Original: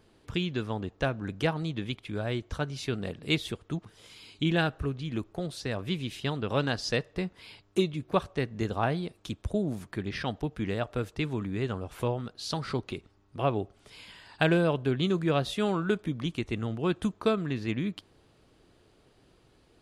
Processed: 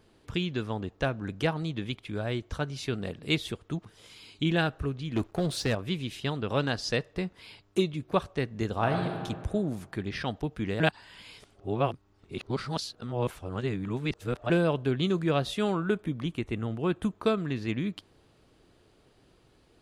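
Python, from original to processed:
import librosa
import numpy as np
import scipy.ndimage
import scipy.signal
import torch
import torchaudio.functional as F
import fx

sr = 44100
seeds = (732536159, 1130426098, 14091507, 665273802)

y = fx.leveller(x, sr, passes=2, at=(5.16, 5.75))
y = fx.reverb_throw(y, sr, start_s=8.71, length_s=0.45, rt60_s=1.8, drr_db=2.5)
y = fx.dynamic_eq(y, sr, hz=5200.0, q=1.1, threshold_db=-56.0, ratio=4.0, max_db=-8, at=(15.73, 17.25))
y = fx.edit(y, sr, fx.reverse_span(start_s=10.8, length_s=3.7), tone=tone)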